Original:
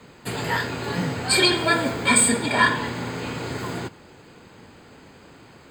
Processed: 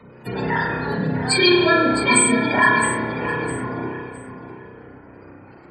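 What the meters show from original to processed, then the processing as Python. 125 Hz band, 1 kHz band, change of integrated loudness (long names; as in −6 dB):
+2.5 dB, +4.0 dB, +3.0 dB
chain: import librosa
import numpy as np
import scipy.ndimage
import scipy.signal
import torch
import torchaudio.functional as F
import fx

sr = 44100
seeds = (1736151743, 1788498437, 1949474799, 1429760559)

y = fx.spec_gate(x, sr, threshold_db=-15, keep='strong')
y = fx.echo_feedback(y, sr, ms=660, feedback_pct=27, wet_db=-11.0)
y = fx.rev_spring(y, sr, rt60_s=1.3, pass_ms=(31,), chirp_ms=20, drr_db=-1.0)
y = y * 10.0 ** (1.0 / 20.0)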